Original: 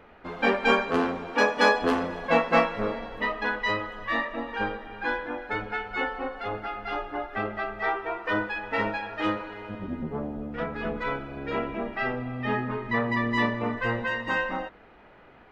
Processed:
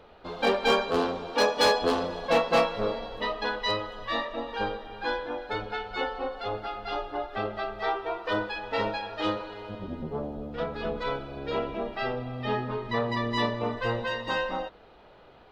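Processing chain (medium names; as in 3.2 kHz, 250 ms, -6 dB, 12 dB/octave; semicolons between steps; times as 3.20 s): graphic EQ 250/500/2000/4000 Hz -5/+3/-9/+10 dB; hard clipper -16 dBFS, distortion -17 dB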